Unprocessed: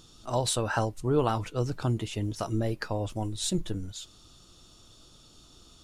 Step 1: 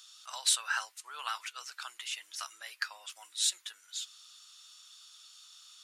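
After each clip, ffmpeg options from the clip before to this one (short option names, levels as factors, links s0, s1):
-af "highpass=f=1400:w=0.5412,highpass=f=1400:w=1.3066,volume=1.41"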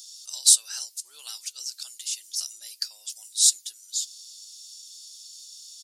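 -af "firequalizer=gain_entry='entry(300,0);entry(1100,-21);entry(4800,13)':delay=0.05:min_phase=1"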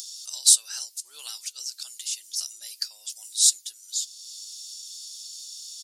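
-af "acompressor=mode=upward:threshold=0.0224:ratio=2.5"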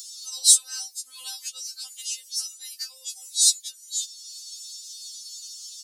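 -af "afftfilt=real='re*3.46*eq(mod(b,12),0)':imag='im*3.46*eq(mod(b,12),0)':win_size=2048:overlap=0.75,volume=1.41"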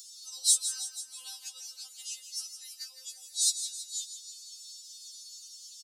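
-af "aecho=1:1:163|326|489|652|815|978:0.316|0.177|0.0992|0.0555|0.0311|0.0174,volume=0.376"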